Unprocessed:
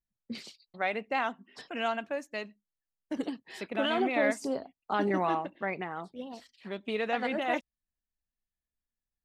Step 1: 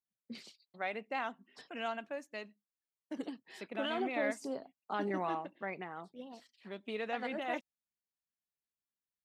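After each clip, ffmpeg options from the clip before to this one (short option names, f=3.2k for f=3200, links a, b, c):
-af "highpass=120,volume=-7dB"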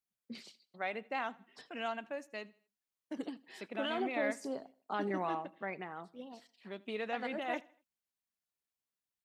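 -af "aecho=1:1:80|160|240:0.0708|0.0283|0.0113"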